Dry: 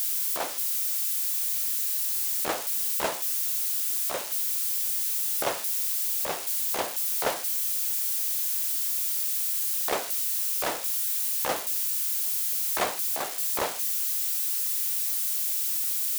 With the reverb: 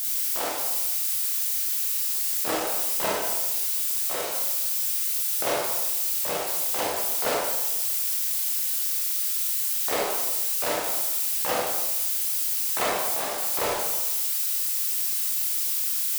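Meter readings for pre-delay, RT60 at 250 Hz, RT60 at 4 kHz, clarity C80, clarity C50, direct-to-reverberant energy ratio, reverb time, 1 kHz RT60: 24 ms, 1.2 s, 0.75 s, 3.0 dB, 0.0 dB, −4.0 dB, 1.1 s, 1.1 s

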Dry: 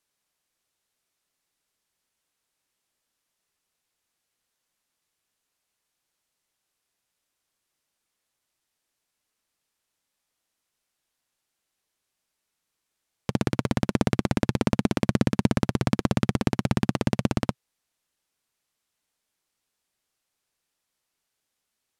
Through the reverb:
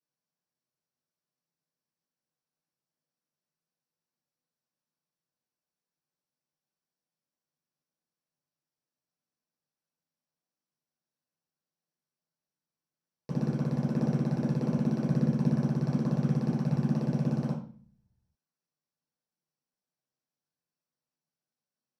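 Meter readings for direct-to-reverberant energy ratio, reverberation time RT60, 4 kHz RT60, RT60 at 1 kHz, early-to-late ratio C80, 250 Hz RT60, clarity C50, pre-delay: −7.0 dB, 0.45 s, 0.40 s, 0.40 s, 10.0 dB, 0.80 s, 5.0 dB, 5 ms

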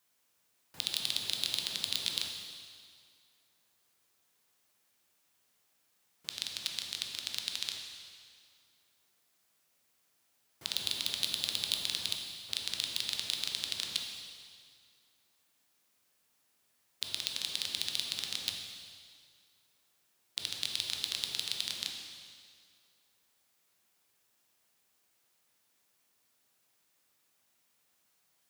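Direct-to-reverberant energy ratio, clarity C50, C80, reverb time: 2.0 dB, 3.5 dB, 5.0 dB, 2.0 s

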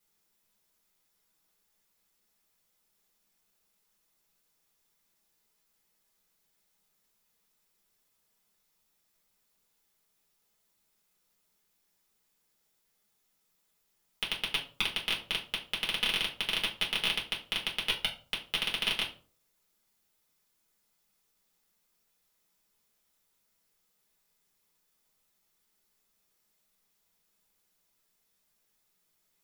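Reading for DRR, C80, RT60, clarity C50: −3.5 dB, 16.0 dB, 0.45 s, 11.0 dB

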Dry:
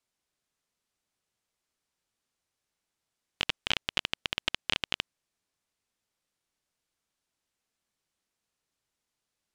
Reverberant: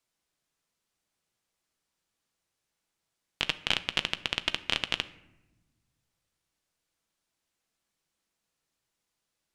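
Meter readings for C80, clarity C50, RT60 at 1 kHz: 19.0 dB, 16.5 dB, 0.85 s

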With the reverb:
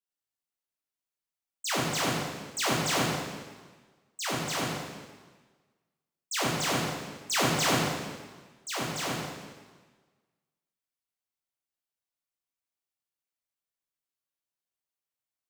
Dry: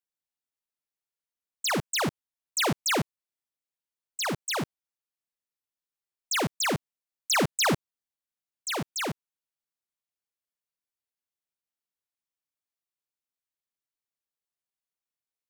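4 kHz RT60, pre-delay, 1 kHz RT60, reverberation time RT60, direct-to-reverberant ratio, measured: 1.3 s, 6 ms, 1.4 s, 1.4 s, −6.0 dB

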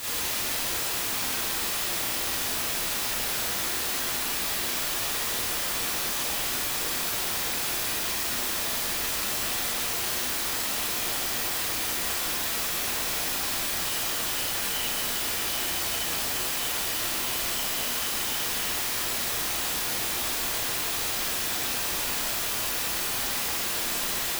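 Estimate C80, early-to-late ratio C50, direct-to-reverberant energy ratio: 0.5 dB, −4.0 dB, −10.5 dB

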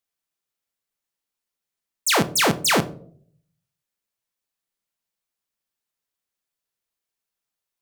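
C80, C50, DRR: 22.0 dB, 18.0 dB, 10.0 dB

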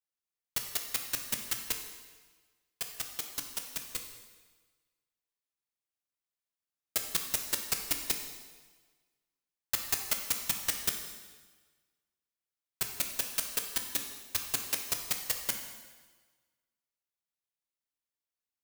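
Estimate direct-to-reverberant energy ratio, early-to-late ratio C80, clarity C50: 3.5 dB, 7.5 dB, 6.0 dB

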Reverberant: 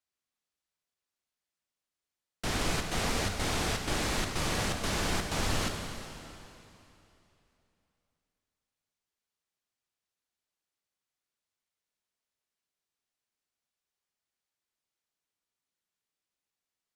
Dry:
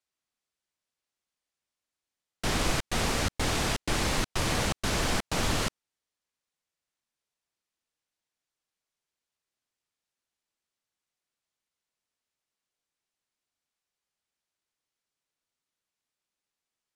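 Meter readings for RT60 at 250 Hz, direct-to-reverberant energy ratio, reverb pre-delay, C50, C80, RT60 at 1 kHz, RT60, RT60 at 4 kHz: 3.0 s, 3.5 dB, 7 ms, 4.5 dB, 5.5 dB, 3.0 s, 3.0 s, 2.8 s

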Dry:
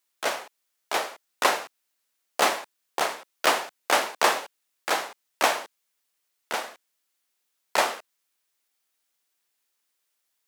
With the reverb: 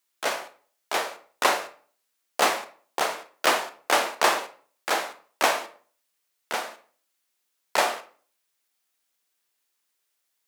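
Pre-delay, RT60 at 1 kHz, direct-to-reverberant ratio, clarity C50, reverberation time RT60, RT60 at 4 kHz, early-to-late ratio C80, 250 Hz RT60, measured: 23 ms, 0.45 s, 9.0 dB, 13.5 dB, 0.45 s, 0.35 s, 18.5 dB, 0.45 s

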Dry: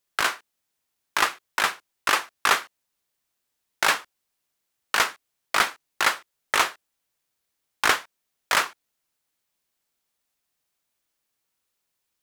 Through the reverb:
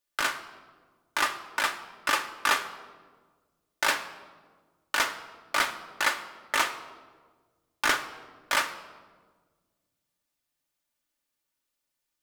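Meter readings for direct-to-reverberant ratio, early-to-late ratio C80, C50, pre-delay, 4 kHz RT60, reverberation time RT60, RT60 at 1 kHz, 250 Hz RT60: 3.5 dB, 14.0 dB, 12.5 dB, 3 ms, 0.95 s, 1.5 s, 1.4 s, 2.1 s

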